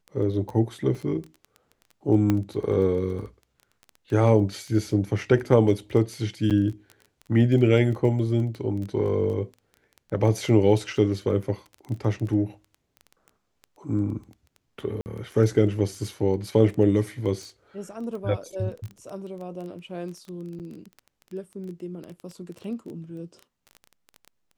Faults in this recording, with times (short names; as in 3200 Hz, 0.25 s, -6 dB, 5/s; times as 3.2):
crackle 12/s -32 dBFS
0.95 gap 2.7 ms
2.3 pop -11 dBFS
6.5–6.51 gap 7.7 ms
15.01–15.06 gap 49 ms
20.59–20.6 gap 8.3 ms